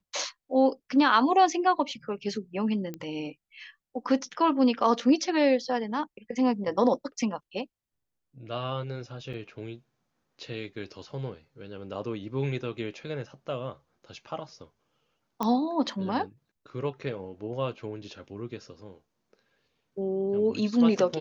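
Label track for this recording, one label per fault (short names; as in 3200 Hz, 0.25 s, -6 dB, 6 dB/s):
2.940000	2.940000	pop -23 dBFS
9.330000	9.340000	gap 6.2 ms
15.430000	15.430000	pop -15 dBFS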